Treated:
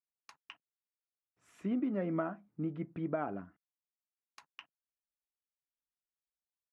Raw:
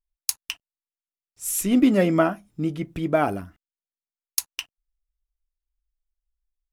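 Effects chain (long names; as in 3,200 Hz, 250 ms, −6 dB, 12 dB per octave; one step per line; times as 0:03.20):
Chebyshev band-pass filter 160–1,500 Hz, order 2
downward compressor 6 to 1, threshold −22 dBFS, peak gain reduction 9 dB
level −8.5 dB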